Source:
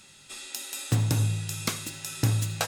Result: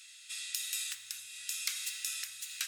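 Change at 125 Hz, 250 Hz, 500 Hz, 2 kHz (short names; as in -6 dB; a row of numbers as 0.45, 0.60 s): under -40 dB, under -40 dB, under -40 dB, -4.5 dB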